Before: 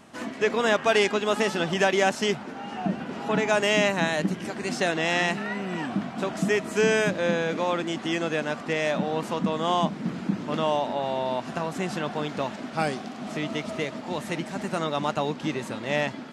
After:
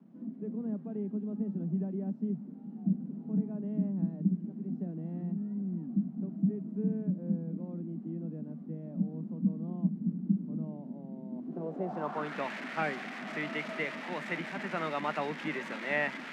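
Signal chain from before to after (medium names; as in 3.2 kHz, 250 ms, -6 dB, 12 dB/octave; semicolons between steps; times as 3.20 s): zero-crossing glitches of -17 dBFS; steep high-pass 150 Hz 72 dB/octave; low-pass sweep 200 Hz -> 2 kHz, 11.30–12.38 s; trim -8 dB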